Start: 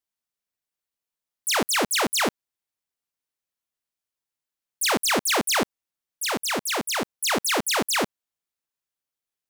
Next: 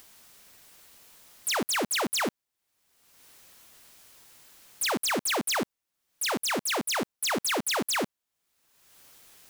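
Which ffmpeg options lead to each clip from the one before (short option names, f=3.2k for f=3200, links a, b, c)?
-af "acompressor=mode=upward:threshold=-33dB:ratio=2.5,asoftclip=type=tanh:threshold=-28.5dB,volume=3dB"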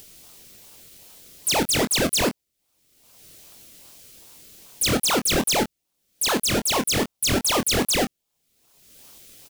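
-filter_complex "[0:a]acrossover=split=2000[a][b];[a]acrusher=samples=34:mix=1:aa=0.000001:lfo=1:lforange=34:lforate=2.5[c];[c][b]amix=inputs=2:normalize=0,asplit=2[d][e];[e]adelay=24,volume=-8dB[f];[d][f]amix=inputs=2:normalize=0,volume=6.5dB"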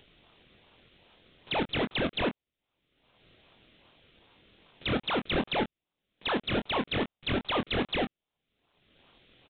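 -af "alimiter=limit=-13.5dB:level=0:latency=1:release=280,aresample=8000,acrusher=bits=3:mode=log:mix=0:aa=0.000001,aresample=44100,volume=-4.5dB"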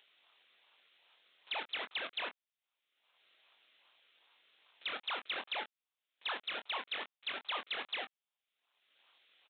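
-af "highpass=980,volume=-5.5dB"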